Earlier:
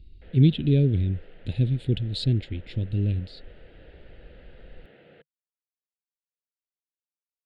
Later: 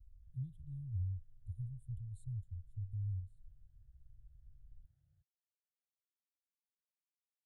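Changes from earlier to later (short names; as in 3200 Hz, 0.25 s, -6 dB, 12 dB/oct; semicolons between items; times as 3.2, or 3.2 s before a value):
speech -11.0 dB; master: add inverse Chebyshev band-stop 200–5100 Hz, stop band 40 dB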